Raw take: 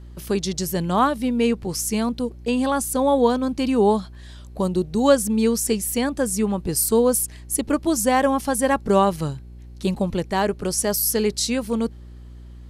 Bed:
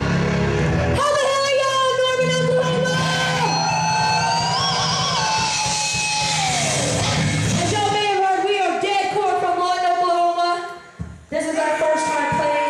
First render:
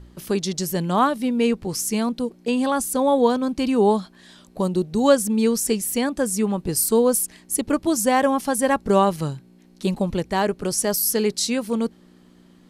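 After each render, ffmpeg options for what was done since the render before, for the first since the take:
ffmpeg -i in.wav -af "bandreject=frequency=60:width_type=h:width=4,bandreject=frequency=120:width_type=h:width=4" out.wav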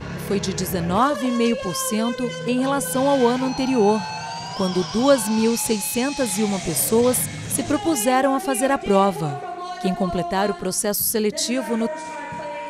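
ffmpeg -i in.wav -i bed.wav -filter_complex "[1:a]volume=-11.5dB[link_01];[0:a][link_01]amix=inputs=2:normalize=0" out.wav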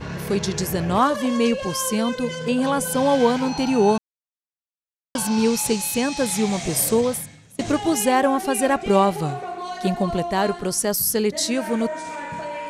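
ffmpeg -i in.wav -filter_complex "[0:a]asplit=4[link_01][link_02][link_03][link_04];[link_01]atrim=end=3.98,asetpts=PTS-STARTPTS,afade=type=out:start_time=3.976:duration=0.004:curve=hsin[link_05];[link_02]atrim=start=3.98:end=5.15,asetpts=PTS-STARTPTS,volume=0[link_06];[link_03]atrim=start=5.15:end=7.59,asetpts=PTS-STARTPTS,afade=type=in:duration=0.004:curve=hsin,afade=type=out:start_time=1.77:duration=0.67:curve=qua:silence=0.0630957[link_07];[link_04]atrim=start=7.59,asetpts=PTS-STARTPTS,afade=type=in:duration=0.004:curve=hsin:silence=0.0630957[link_08];[link_05][link_06][link_07][link_08]concat=n=4:v=0:a=1" out.wav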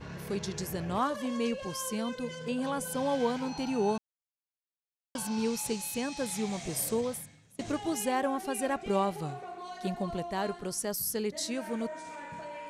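ffmpeg -i in.wav -af "volume=-11.5dB" out.wav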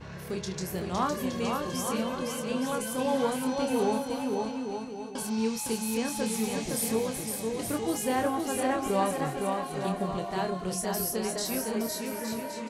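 ffmpeg -i in.wav -filter_complex "[0:a]asplit=2[link_01][link_02];[link_02]adelay=27,volume=-7dB[link_03];[link_01][link_03]amix=inputs=2:normalize=0,aecho=1:1:510|867|1117|1292|1414:0.631|0.398|0.251|0.158|0.1" out.wav

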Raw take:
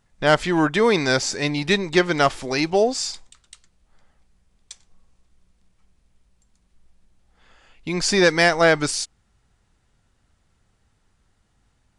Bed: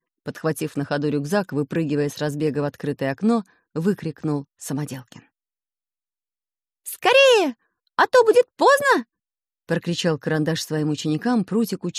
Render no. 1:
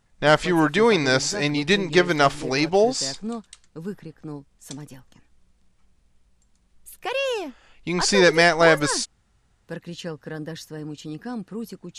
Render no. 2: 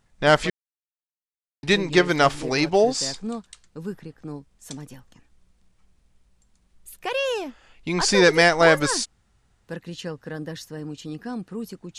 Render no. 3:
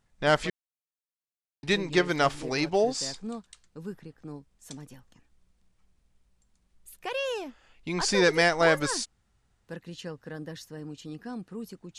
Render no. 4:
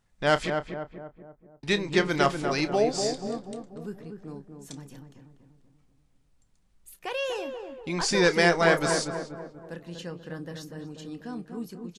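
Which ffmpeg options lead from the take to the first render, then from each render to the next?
ffmpeg -i in.wav -i bed.wav -filter_complex "[1:a]volume=-11.5dB[link_01];[0:a][link_01]amix=inputs=2:normalize=0" out.wav
ffmpeg -i in.wav -filter_complex "[0:a]asplit=3[link_01][link_02][link_03];[link_01]atrim=end=0.5,asetpts=PTS-STARTPTS,afade=type=out:start_time=0.496:duration=0.004:curve=hsin[link_04];[link_02]atrim=start=0.5:end=1.63,asetpts=PTS-STARTPTS,volume=0[link_05];[link_03]atrim=start=1.63,asetpts=PTS-STARTPTS,afade=type=in:duration=0.004:curve=hsin[link_06];[link_04][link_05][link_06]concat=n=3:v=0:a=1" out.wav
ffmpeg -i in.wav -af "volume=-6dB" out.wav
ffmpeg -i in.wav -filter_complex "[0:a]asplit=2[link_01][link_02];[link_02]adelay=29,volume=-13dB[link_03];[link_01][link_03]amix=inputs=2:normalize=0,asplit=2[link_04][link_05];[link_05]adelay=242,lowpass=frequency=1200:poles=1,volume=-5dB,asplit=2[link_06][link_07];[link_07]adelay=242,lowpass=frequency=1200:poles=1,volume=0.52,asplit=2[link_08][link_09];[link_09]adelay=242,lowpass=frequency=1200:poles=1,volume=0.52,asplit=2[link_10][link_11];[link_11]adelay=242,lowpass=frequency=1200:poles=1,volume=0.52,asplit=2[link_12][link_13];[link_13]adelay=242,lowpass=frequency=1200:poles=1,volume=0.52,asplit=2[link_14][link_15];[link_15]adelay=242,lowpass=frequency=1200:poles=1,volume=0.52,asplit=2[link_16][link_17];[link_17]adelay=242,lowpass=frequency=1200:poles=1,volume=0.52[link_18];[link_04][link_06][link_08][link_10][link_12][link_14][link_16][link_18]amix=inputs=8:normalize=0" out.wav

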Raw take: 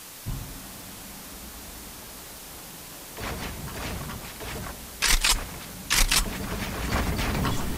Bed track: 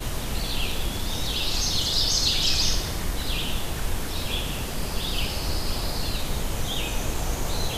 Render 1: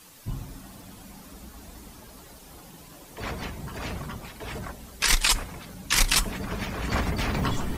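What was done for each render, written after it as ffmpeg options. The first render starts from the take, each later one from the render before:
ffmpeg -i in.wav -af "afftdn=noise_reduction=10:noise_floor=-42" out.wav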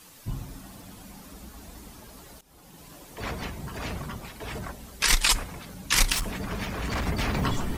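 ffmpeg -i in.wav -filter_complex "[0:a]asettb=1/sr,asplit=3[link_01][link_02][link_03];[link_01]atrim=end=6.124[link_04];[link_02]atrim=start=6.12:end=7.07,asetpts=PTS-STARTPTS,afade=type=in:duration=0.004:curve=qsin,afade=type=out:start_time=0.946:duration=0.004:curve=qsin,volume=25.5dB,asoftclip=hard,volume=-25.5dB[link_05];[link_03]atrim=start=7.066[link_06];[link_04][link_05]acrossfade=duration=0.004:curve1=hsin:curve2=qsin[link_07];[link_07][link_06]acrossfade=duration=0.004:curve1=qsin:curve2=hsin,asplit=2[link_08][link_09];[link_08]atrim=end=2.41,asetpts=PTS-STARTPTS,afade=type=out:start_time=2.406:duration=0.004:curve=hsin:silence=0.133352[link_10];[link_09]atrim=start=2.41,asetpts=PTS-STARTPTS,afade=type=in:duration=0.47:silence=0.133352[link_11];[link_10][link_11]concat=n=2:v=0:a=1" out.wav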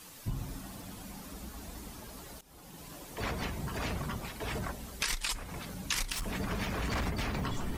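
ffmpeg -i in.wav -af "acompressor=threshold=-30dB:ratio=12" out.wav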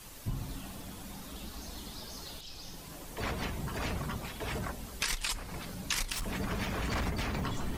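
ffmpeg -i in.wav -i bed.wav -filter_complex "[1:a]volume=-25dB[link_01];[0:a][link_01]amix=inputs=2:normalize=0" out.wav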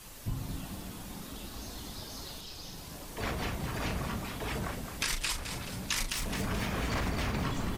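ffmpeg -i in.wav -filter_complex "[0:a]asplit=2[link_01][link_02];[link_02]adelay=38,volume=-9dB[link_03];[link_01][link_03]amix=inputs=2:normalize=0,asplit=7[link_04][link_05][link_06][link_07][link_08][link_09][link_10];[link_05]adelay=215,afreqshift=44,volume=-8.5dB[link_11];[link_06]adelay=430,afreqshift=88,volume=-14.3dB[link_12];[link_07]adelay=645,afreqshift=132,volume=-20.2dB[link_13];[link_08]adelay=860,afreqshift=176,volume=-26dB[link_14];[link_09]adelay=1075,afreqshift=220,volume=-31.9dB[link_15];[link_10]adelay=1290,afreqshift=264,volume=-37.7dB[link_16];[link_04][link_11][link_12][link_13][link_14][link_15][link_16]amix=inputs=7:normalize=0" out.wav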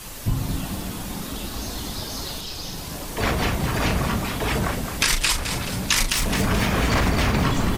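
ffmpeg -i in.wav -af "volume=12dB" out.wav

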